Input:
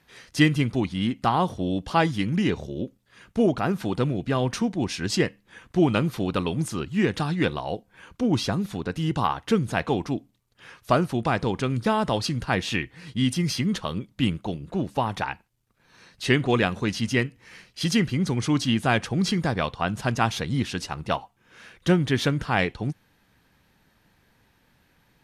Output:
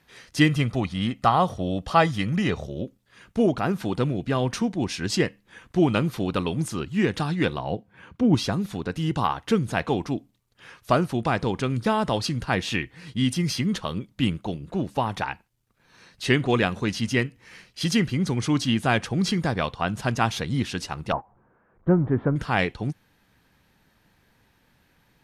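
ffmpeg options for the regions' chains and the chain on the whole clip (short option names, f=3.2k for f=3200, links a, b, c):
-filter_complex "[0:a]asettb=1/sr,asplit=3[a][b][c];[a]atrim=end=0.494[d];[b]atrim=start=0.49:end=2.85,asetpts=PTS-STARTPTS,afade=t=in:d=0.004:c=qsin,afade=t=out:st=2.356:d=0.004:c=qsin,equalizer=f=1.1k:t=o:w=1.5:g=3.5,aecho=1:1:1.6:0.37,atrim=end_sample=104076[e];[c]atrim=start=2.846[f];[d][e]acrossfade=d=0.004:c1=hsin:c2=qsin[g];[g][f]acrossfade=d=0.004:c1=qsin:c2=hsin,asettb=1/sr,asplit=3[h][i][j];[h]atrim=end=7.584[k];[i]atrim=start=7.58:end=8.35,asetpts=PTS-STARTPTS,afade=t=in:d=0.004:c=qsin,afade=t=out:st=0.766:d=0.004:c=qsin,highpass=84,bass=f=250:g=7,treble=f=4k:g=-10[l];[j]atrim=start=8.346[m];[k][l]acrossfade=d=0.004:c1=hsin:c2=qsin[n];[n][m]acrossfade=d=0.004:c1=qsin:c2=hsin,asettb=1/sr,asplit=3[o][p][q];[o]atrim=end=21.124[r];[p]atrim=start=21.12:end=22.36,asetpts=PTS-STARTPTS,afade=t=in:d=0.004:c=qsin,afade=t=out:st=1.236:d=0.004:c=qsin,aeval=exprs='val(0)+0.5*0.0211*sgn(val(0))':c=same,agate=range=-19dB:threshold=-32dB:ratio=16:release=100:detection=peak,lowpass=f=1.2k:w=0.5412,lowpass=f=1.2k:w=1.3066[s];[q]atrim=start=22.356[t];[r][s]acrossfade=d=0.004:c1=hsin:c2=qsin[u];[u][t]acrossfade=d=0.004:c1=qsin:c2=hsin"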